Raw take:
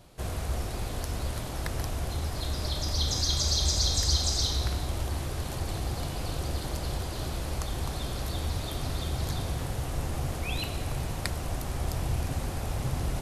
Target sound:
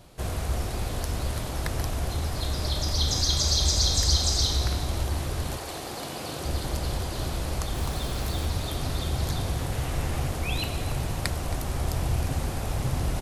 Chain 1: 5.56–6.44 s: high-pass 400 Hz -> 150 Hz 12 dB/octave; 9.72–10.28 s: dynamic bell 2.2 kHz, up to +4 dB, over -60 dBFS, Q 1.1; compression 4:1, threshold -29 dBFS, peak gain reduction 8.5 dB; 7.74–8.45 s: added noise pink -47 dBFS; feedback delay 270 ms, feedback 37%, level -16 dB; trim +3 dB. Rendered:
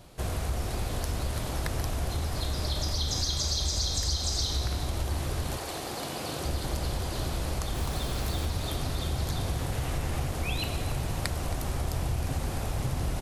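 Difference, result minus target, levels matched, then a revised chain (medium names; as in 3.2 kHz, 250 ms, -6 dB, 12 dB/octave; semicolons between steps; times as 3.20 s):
compression: peak gain reduction +8.5 dB
5.56–6.44 s: high-pass 400 Hz -> 150 Hz 12 dB/octave; 7.74–8.45 s: added noise pink -47 dBFS; 9.72–10.28 s: dynamic bell 2.2 kHz, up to +4 dB, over -60 dBFS, Q 1.1; feedback delay 270 ms, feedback 37%, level -16 dB; trim +3 dB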